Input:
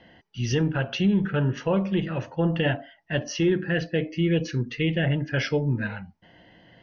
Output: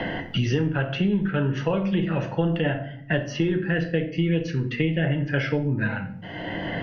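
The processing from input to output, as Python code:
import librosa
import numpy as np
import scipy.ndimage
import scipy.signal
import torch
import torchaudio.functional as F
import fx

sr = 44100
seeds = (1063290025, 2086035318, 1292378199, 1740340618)

y = fx.bass_treble(x, sr, bass_db=-1, treble_db=-9)
y = fx.room_shoebox(y, sr, seeds[0], volume_m3=35.0, walls='mixed', distance_m=0.33)
y = fx.band_squash(y, sr, depth_pct=100)
y = F.gain(torch.from_numpy(y), -1.0).numpy()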